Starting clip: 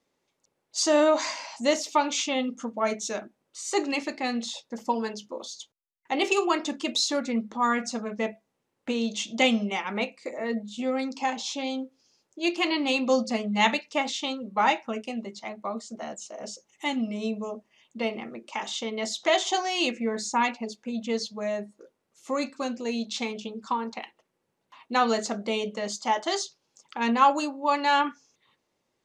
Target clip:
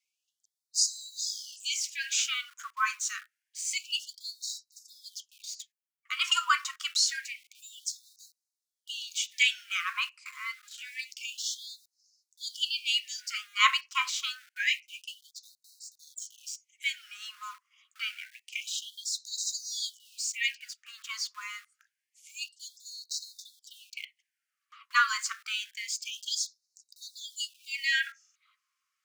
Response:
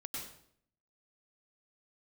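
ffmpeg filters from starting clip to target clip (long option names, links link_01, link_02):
-filter_complex "[0:a]equalizer=frequency=3600:width=4.3:gain=-6.5,asplit=2[link_01][link_02];[link_02]aeval=exprs='val(0)*gte(abs(val(0)),0.0126)':channel_layout=same,volume=-5dB[link_03];[link_01][link_03]amix=inputs=2:normalize=0,afreqshift=190,afftfilt=real='re*gte(b*sr/1024,990*pow(3800/990,0.5+0.5*sin(2*PI*0.27*pts/sr)))':imag='im*gte(b*sr/1024,990*pow(3800/990,0.5+0.5*sin(2*PI*0.27*pts/sr)))':win_size=1024:overlap=0.75,volume=-1.5dB"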